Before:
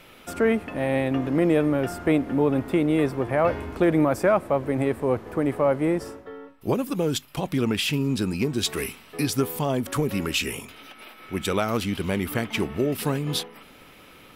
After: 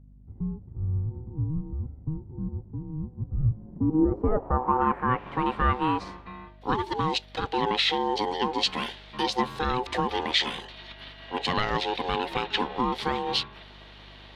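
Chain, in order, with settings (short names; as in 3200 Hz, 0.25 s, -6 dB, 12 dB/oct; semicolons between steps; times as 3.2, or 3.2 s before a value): ring modulator 630 Hz; low-pass sweep 120 Hz -> 3900 Hz, 3.53–5.39; hum 50 Hz, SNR 23 dB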